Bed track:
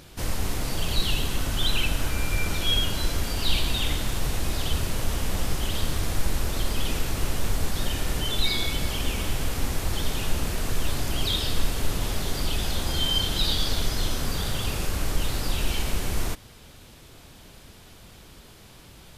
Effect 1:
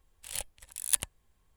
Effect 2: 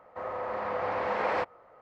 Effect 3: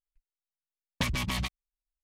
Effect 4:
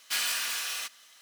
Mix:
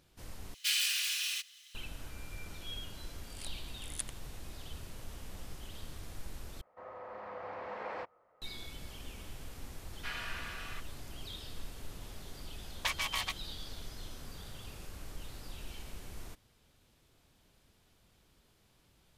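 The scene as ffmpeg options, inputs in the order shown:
ffmpeg -i bed.wav -i cue0.wav -i cue1.wav -i cue2.wav -i cue3.wav -filter_complex "[4:a]asplit=2[link_01][link_02];[0:a]volume=-19.5dB[link_03];[link_01]highpass=frequency=2700:width_type=q:width=1.7[link_04];[1:a]aresample=22050,aresample=44100[link_05];[link_02]lowpass=2000[link_06];[3:a]highpass=frequency=660:width=0.5412,highpass=frequency=660:width=1.3066[link_07];[link_03]asplit=3[link_08][link_09][link_10];[link_08]atrim=end=0.544[link_11];[link_04]atrim=end=1.21,asetpts=PTS-STARTPTS,volume=-3.5dB[link_12];[link_09]atrim=start=1.746:end=6.614[link_13];[2:a]atrim=end=1.81,asetpts=PTS-STARTPTS,volume=-12.5dB[link_14];[link_10]atrim=start=8.416[link_15];[link_05]atrim=end=1.56,asetpts=PTS-STARTPTS,volume=-11.5dB,afade=type=in:duration=0.004:curve=hsin,afade=type=out:start_time=1.556:duration=0.004:curve=hsin,adelay=3060[link_16];[link_06]atrim=end=1.21,asetpts=PTS-STARTPTS,volume=-4.5dB,afade=type=in:duration=0.004:curve=hsin,afade=type=out:start_time=1.206:duration=0.004:curve=hsin,adelay=9930[link_17];[link_07]atrim=end=2.03,asetpts=PTS-STARTPTS,volume=-1.5dB,afade=type=in:duration=0.004:curve=hsin,afade=type=out:start_time=2.026:duration=0.004:curve=hsin,adelay=11840[link_18];[link_11][link_12]acrossfade=duration=0.004:curve1=hsin:curve2=hsin[link_19];[link_19][link_13]acrossfade=duration=0.004:curve1=hsin:curve2=hsin[link_20];[link_20][link_14]acrossfade=duration=0.004:curve1=hsin:curve2=hsin[link_21];[link_21][link_15]acrossfade=duration=0.004:curve1=hsin:curve2=hsin[link_22];[link_22][link_16][link_17][link_18]amix=inputs=4:normalize=0" out.wav

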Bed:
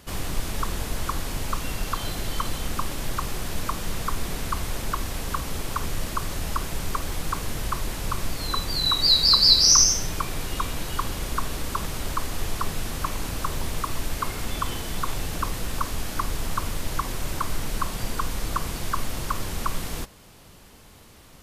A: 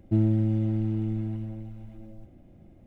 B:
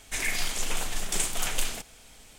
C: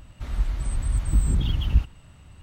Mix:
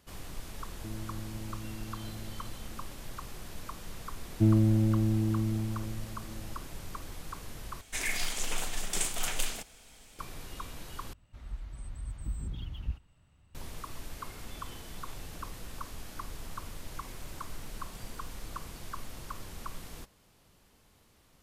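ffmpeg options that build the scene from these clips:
ffmpeg -i bed.wav -i cue0.wav -i cue1.wav -i cue2.wav -filter_complex "[1:a]asplit=2[link_01][link_02];[2:a]asplit=2[link_03][link_04];[0:a]volume=-14dB[link_05];[link_01]acompressor=threshold=-30dB:ratio=6:attack=3.2:release=140:knee=1:detection=peak[link_06];[link_04]acompressor=threshold=-38dB:ratio=6:attack=3.2:release=140:knee=1:detection=peak[link_07];[link_05]asplit=3[link_08][link_09][link_10];[link_08]atrim=end=7.814[link_11];[link_03]atrim=end=2.38,asetpts=PTS-STARTPTS,volume=-3.5dB[link_12];[link_09]atrim=start=10.186:end=11.134[link_13];[3:a]atrim=end=2.42,asetpts=PTS-STARTPTS,volume=-15.5dB[link_14];[link_10]atrim=start=13.546[link_15];[link_06]atrim=end=2.86,asetpts=PTS-STARTPTS,volume=-9dB,afade=type=in:duration=0.004:curve=hsin,afade=type=out:start_time=2.856:duration=0.004:curve=hsin,adelay=730[link_16];[link_02]atrim=end=2.86,asetpts=PTS-STARTPTS,volume=-0.5dB,afade=type=in:duration=0.004:curve=hsin,afade=type=out:start_time=2.856:duration=0.004:curve=hsin,adelay=189189S[link_17];[link_07]atrim=end=2.38,asetpts=PTS-STARTPTS,volume=-17.5dB,afade=type=in:duration=0.004:curve=hsin,afade=type=out:start_time=2.376:duration=0.004:curve=hsin,adelay=16830[link_18];[link_11][link_12]acrossfade=duration=0.004:curve1=hsin:curve2=hsin[link_19];[link_19][link_13]acrossfade=duration=0.004:curve1=hsin:curve2=hsin[link_20];[link_20][link_14]acrossfade=duration=0.004:curve1=hsin:curve2=hsin[link_21];[link_21][link_15]acrossfade=duration=0.004:curve1=hsin:curve2=hsin[link_22];[link_22][link_16][link_17][link_18]amix=inputs=4:normalize=0" out.wav

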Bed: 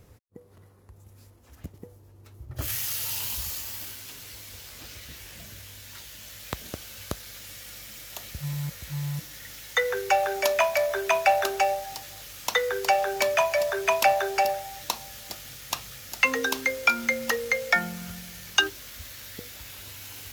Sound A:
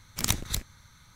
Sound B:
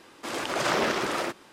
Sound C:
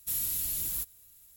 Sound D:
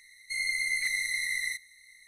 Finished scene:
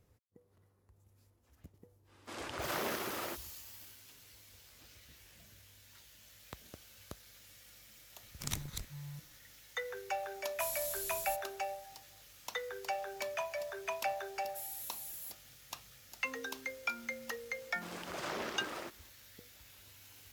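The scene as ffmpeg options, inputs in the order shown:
ffmpeg -i bed.wav -i cue0.wav -i cue1.wav -i cue2.wav -filter_complex "[2:a]asplit=2[link_01][link_02];[3:a]asplit=2[link_03][link_04];[0:a]volume=-15.5dB[link_05];[link_03]equalizer=frequency=5200:width=0.61:gain=6.5[link_06];[link_04]highpass=340[link_07];[link_01]atrim=end=1.52,asetpts=PTS-STARTPTS,volume=-12dB,afade=type=in:duration=0.1,afade=type=out:start_time=1.42:duration=0.1,adelay=2040[link_08];[1:a]atrim=end=1.15,asetpts=PTS-STARTPTS,volume=-12dB,afade=type=in:duration=0.004:curve=hsin,afade=type=out:start_time=1.146:duration=0.004:curve=hsin,adelay=8230[link_09];[link_06]atrim=end=1.36,asetpts=PTS-STARTPTS,volume=-10.5dB,afade=type=in:duration=0.004:curve=hsin,afade=type=out:start_time=1.356:duration=0.004:curve=hsin,adelay=10520[link_10];[link_07]atrim=end=1.36,asetpts=PTS-STARTPTS,volume=-13dB,afade=type=in:duration=0.004:curve=hsin,afade=type=out:start_time=1.356:duration=0.004:curve=hsin,adelay=14480[link_11];[link_02]atrim=end=1.52,asetpts=PTS-STARTPTS,volume=-14.5dB,afade=type=in:duration=0.004:curve=hsin,afade=type=out:start_time=1.516:duration=0.004:curve=hsin,adelay=17580[link_12];[link_05][link_08][link_09][link_10][link_11][link_12]amix=inputs=6:normalize=0" out.wav

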